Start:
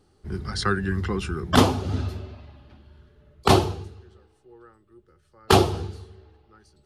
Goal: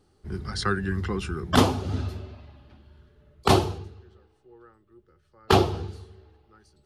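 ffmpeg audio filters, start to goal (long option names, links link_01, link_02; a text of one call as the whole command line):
ffmpeg -i in.wav -filter_complex "[0:a]asettb=1/sr,asplit=3[link_01][link_02][link_03];[link_01]atrim=end=3.784[link_04];[link_02]atrim=start=3.78:end=5.88,asetpts=PTS-STARTPTS,afade=type=in:duration=0.004:curve=qsin,afade=type=out:start_time=2.096:duration=0.004:curve=qsin,equalizer=frequency=9600:width=0.87:gain=-8[link_05];[link_03]atrim=start=5.876[link_06];[link_04][link_05]acrossfade=duration=0.004:curve1=hsin:curve2=qsin[link_07];[link_07][link_06]acrossfade=duration=0.004:curve1=qsin:curve2=hsin,volume=-2dB" out.wav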